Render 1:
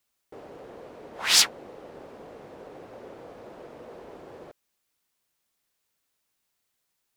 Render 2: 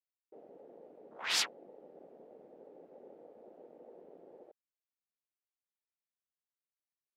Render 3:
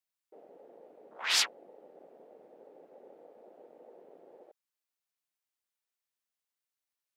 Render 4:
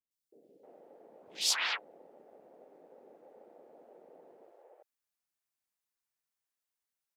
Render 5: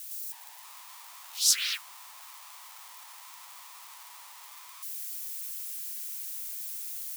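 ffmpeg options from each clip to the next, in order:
ffmpeg -i in.wav -af "bass=frequency=250:gain=-5,treble=frequency=4000:gain=-7,afwtdn=0.0112,volume=-8.5dB" out.wav
ffmpeg -i in.wav -af "lowshelf=frequency=390:gain=-11,volume=4.5dB" out.wav
ffmpeg -i in.wav -filter_complex "[0:a]acrossover=split=440|3300[link_01][link_02][link_03];[link_03]adelay=110[link_04];[link_02]adelay=310[link_05];[link_01][link_05][link_04]amix=inputs=3:normalize=0" out.wav
ffmpeg -i in.wav -af "aeval=exprs='val(0)+0.5*0.00891*sgn(val(0))':channel_layout=same,afreqshift=490,aderivative,volume=7.5dB" out.wav

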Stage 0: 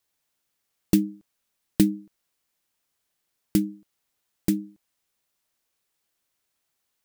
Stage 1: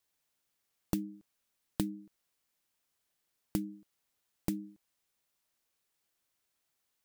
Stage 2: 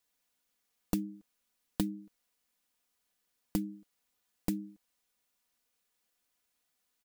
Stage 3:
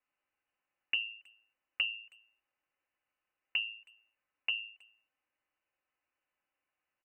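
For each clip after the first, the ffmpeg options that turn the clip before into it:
ffmpeg -i in.wav -af "acompressor=threshold=-27dB:ratio=5,volume=-3.5dB" out.wav
ffmpeg -i in.wav -af "aecho=1:1:4.1:0.52" out.wav
ffmpeg -i in.wav -filter_complex "[0:a]lowpass=frequency=2600:width_type=q:width=0.5098,lowpass=frequency=2600:width_type=q:width=0.6013,lowpass=frequency=2600:width_type=q:width=0.9,lowpass=frequency=2600:width_type=q:width=2.563,afreqshift=-3000,bandreject=frequency=111.7:width_type=h:width=4,bandreject=frequency=223.4:width_type=h:width=4,bandreject=frequency=335.1:width_type=h:width=4,bandreject=frequency=446.8:width_type=h:width=4,asplit=2[link_01][link_02];[link_02]adelay=320,highpass=300,lowpass=3400,asoftclip=type=hard:threshold=-28dB,volume=-26dB[link_03];[link_01][link_03]amix=inputs=2:normalize=0,volume=-1dB" out.wav

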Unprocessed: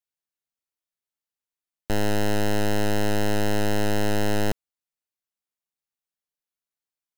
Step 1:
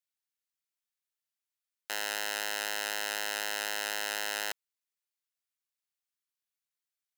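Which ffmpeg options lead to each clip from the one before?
ffmpeg -i in.wav -af "highpass=1300" out.wav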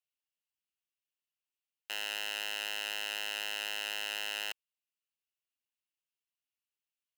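ffmpeg -i in.wav -af "equalizer=frequency=2800:width=3.6:gain=12.5,volume=-7.5dB" out.wav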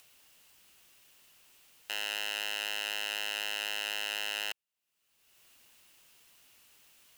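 ffmpeg -i in.wav -af "acompressor=mode=upward:threshold=-41dB:ratio=2.5,volume=2dB" out.wav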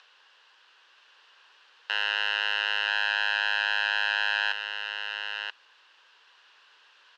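ffmpeg -i in.wav -filter_complex "[0:a]highpass=frequency=460:width=0.5412,highpass=frequency=460:width=1.3066,equalizer=frequency=660:width_type=q:width=4:gain=-8,equalizer=frequency=1000:width_type=q:width=4:gain=6,equalizer=frequency=1600:width_type=q:width=4:gain=9,equalizer=frequency=2200:width_type=q:width=4:gain=-7,lowpass=frequency=4200:width=0.5412,lowpass=frequency=4200:width=1.3066,asplit=2[link_01][link_02];[link_02]aecho=0:1:982:0.473[link_03];[link_01][link_03]amix=inputs=2:normalize=0,volume=7.5dB" out.wav

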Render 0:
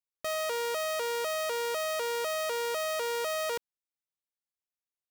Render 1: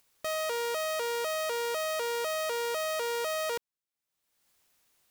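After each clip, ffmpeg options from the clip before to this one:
ffmpeg -i in.wav -af "acompressor=mode=upward:threshold=-50dB:ratio=2.5" out.wav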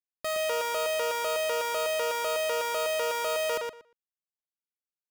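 ffmpeg -i in.wav -filter_complex "[0:a]alimiter=level_in=5dB:limit=-24dB:level=0:latency=1,volume=-5dB,acrusher=bits=7:mix=0:aa=0.000001,asplit=2[link_01][link_02];[link_02]adelay=118,lowpass=frequency=4400:poles=1,volume=-3dB,asplit=2[link_03][link_04];[link_04]adelay=118,lowpass=frequency=4400:poles=1,volume=0.17,asplit=2[link_05][link_06];[link_06]adelay=118,lowpass=frequency=4400:poles=1,volume=0.17[link_07];[link_03][link_05][link_07]amix=inputs=3:normalize=0[link_08];[link_01][link_08]amix=inputs=2:normalize=0,volume=4dB" out.wav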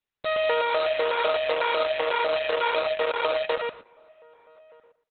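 ffmpeg -i in.wav -filter_complex "[0:a]aeval=exprs='0.1*(cos(1*acos(clip(val(0)/0.1,-1,1)))-cos(1*PI/2))+0.000708*(cos(8*acos(clip(val(0)/0.1,-1,1)))-cos(8*PI/2))':channel_layout=same,asplit=2[link_01][link_02];[link_02]adelay=1224,volume=-27dB,highshelf=frequency=4000:gain=-27.6[link_03];[link_01][link_03]amix=inputs=2:normalize=0,volume=6.5dB" -ar 48000 -c:a libopus -b:a 8k out.opus

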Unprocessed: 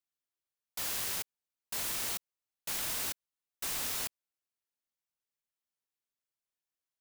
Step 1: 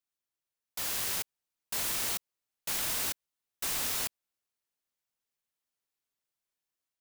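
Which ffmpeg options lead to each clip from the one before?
ffmpeg -i in.wav -af "dynaudnorm=framelen=570:gausssize=3:maxgain=3dB" out.wav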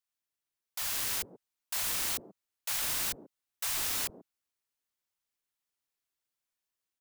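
ffmpeg -i in.wav -filter_complex "[0:a]acrossover=split=170|540[link_01][link_02][link_03];[link_01]adelay=30[link_04];[link_02]adelay=140[link_05];[link_04][link_05][link_03]amix=inputs=3:normalize=0" out.wav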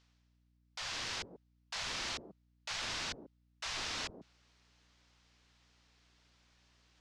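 ffmpeg -i in.wav -af "lowpass=frequency=5600:width=0.5412,lowpass=frequency=5600:width=1.3066,areverse,acompressor=mode=upward:threshold=-51dB:ratio=2.5,areverse,aeval=exprs='val(0)+0.000316*(sin(2*PI*60*n/s)+sin(2*PI*2*60*n/s)/2+sin(2*PI*3*60*n/s)/3+sin(2*PI*4*60*n/s)/4+sin(2*PI*5*60*n/s)/5)':channel_layout=same,volume=-1dB" out.wav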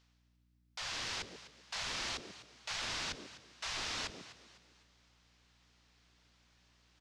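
ffmpeg -i in.wav -filter_complex "[0:a]asplit=5[link_01][link_02][link_03][link_04][link_05];[link_02]adelay=252,afreqshift=53,volume=-15dB[link_06];[link_03]adelay=504,afreqshift=106,volume=-23dB[link_07];[link_04]adelay=756,afreqshift=159,volume=-30.9dB[link_08];[link_05]adelay=1008,afreqshift=212,volume=-38.9dB[link_09];[link_01][link_06][link_07][link_08][link_09]amix=inputs=5:normalize=0" out.wav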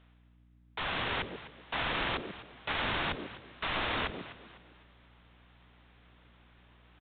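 ffmpeg -i in.wav -filter_complex "[0:a]asplit=2[link_01][link_02];[link_02]acrusher=samples=11:mix=1:aa=0.000001,volume=-5dB[link_03];[link_01][link_03]amix=inputs=2:normalize=0,aresample=8000,aresample=44100,volume=6.5dB" out.wav

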